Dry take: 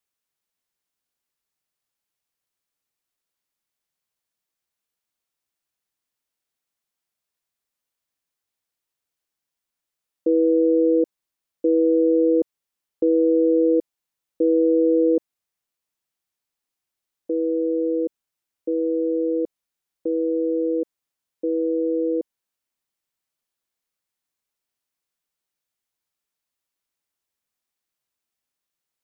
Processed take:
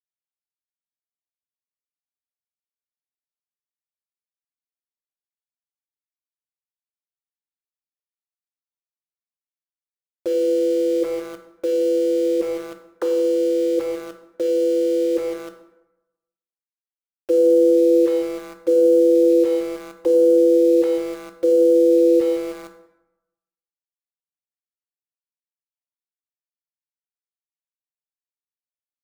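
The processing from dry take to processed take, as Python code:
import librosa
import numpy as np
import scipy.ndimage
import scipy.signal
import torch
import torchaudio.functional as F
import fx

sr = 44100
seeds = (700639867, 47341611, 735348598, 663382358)

p1 = fx.sine_speech(x, sr)
p2 = fx.dereverb_blind(p1, sr, rt60_s=0.84)
p3 = fx.over_compress(p2, sr, threshold_db=-25.0, ratio=-1.0)
p4 = p3 + fx.echo_wet_lowpass(p3, sr, ms=159, feedback_pct=57, hz=460.0, wet_db=-14.5, dry=0)
p5 = np.where(np.abs(p4) >= 10.0 ** (-39.0 / 20.0), p4, 0.0)
p6 = fx.rev_plate(p5, sr, seeds[0], rt60_s=0.98, hf_ratio=0.55, predelay_ms=0, drr_db=5.5)
y = p6 * librosa.db_to_amplitude(7.0)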